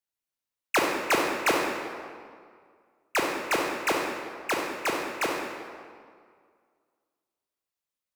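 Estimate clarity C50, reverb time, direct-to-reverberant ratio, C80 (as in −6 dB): 1.0 dB, 2.0 s, −1.0 dB, 3.0 dB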